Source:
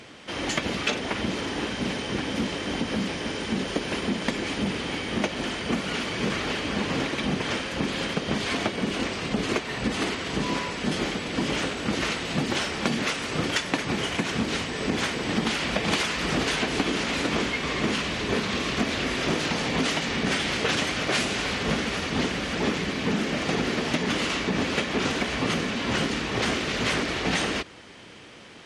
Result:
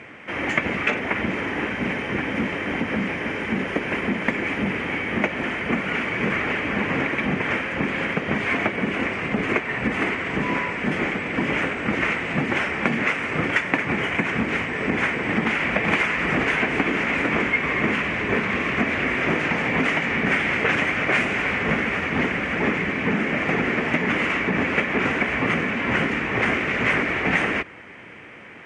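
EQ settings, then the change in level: high-pass 62 Hz; low-pass 9.8 kHz 24 dB/octave; resonant high shelf 3 kHz -11 dB, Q 3; +2.5 dB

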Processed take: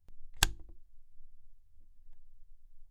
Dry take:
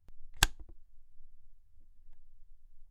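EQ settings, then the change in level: peaking EQ 1.4 kHz -3 dB 1.7 oct; hum notches 50/100/150/200/250/300/350 Hz; 0.0 dB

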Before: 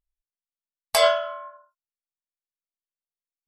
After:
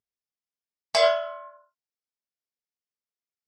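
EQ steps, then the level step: cabinet simulation 110–7600 Hz, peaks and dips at 110 Hz +10 dB, 230 Hz +9 dB, 430 Hz +8 dB, 690 Hz +4 dB, 2.1 kHz +4 dB, 5.2 kHz +8 dB; -5.0 dB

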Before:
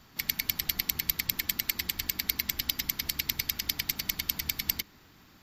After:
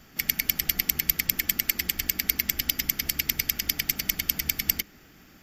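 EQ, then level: graphic EQ with 31 bands 100 Hz -11 dB, 1 kHz -12 dB, 4 kHz -10 dB; +5.5 dB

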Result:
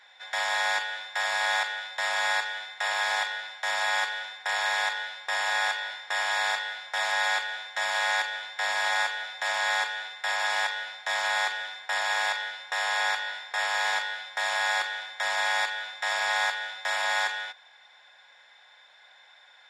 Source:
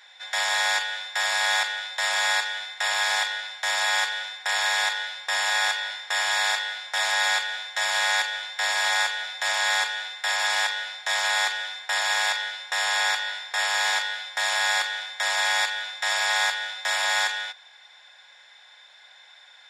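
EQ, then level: treble shelf 2.8 kHz -9.5 dB; 0.0 dB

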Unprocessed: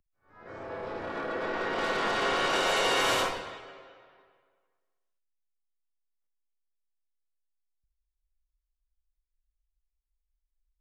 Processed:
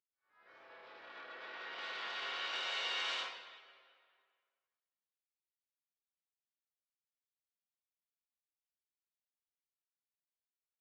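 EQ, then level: band-pass filter 3.6 kHz, Q 1.1; distance through air 110 m; -4.5 dB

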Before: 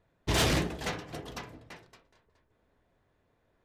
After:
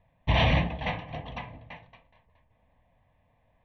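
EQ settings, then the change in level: brick-wall FIR low-pass 6 kHz; distance through air 160 m; static phaser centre 1.4 kHz, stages 6; +7.5 dB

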